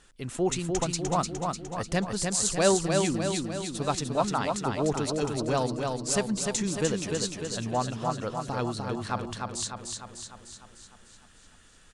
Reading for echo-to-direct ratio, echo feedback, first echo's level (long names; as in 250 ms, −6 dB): −2.5 dB, 57%, −4.0 dB